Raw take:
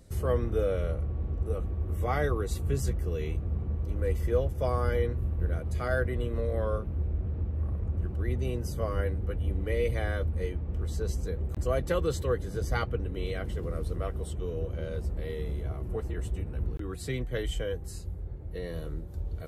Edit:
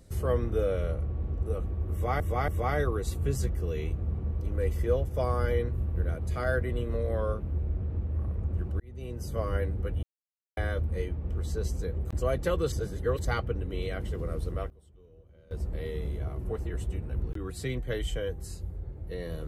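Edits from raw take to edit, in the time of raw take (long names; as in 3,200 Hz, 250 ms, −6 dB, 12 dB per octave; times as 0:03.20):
0:01.92–0:02.20: repeat, 3 plays
0:08.24–0:08.84: fade in
0:09.47–0:10.01: silence
0:12.16–0:12.69: reverse
0:13.80–0:15.29: duck −22.5 dB, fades 0.34 s logarithmic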